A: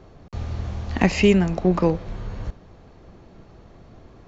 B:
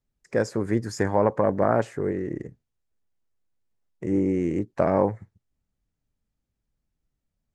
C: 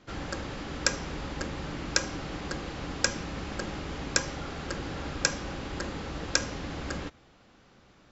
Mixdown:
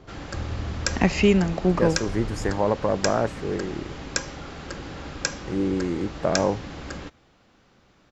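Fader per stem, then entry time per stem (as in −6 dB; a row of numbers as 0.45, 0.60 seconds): −2.0, −1.5, −0.5 decibels; 0.00, 1.45, 0.00 seconds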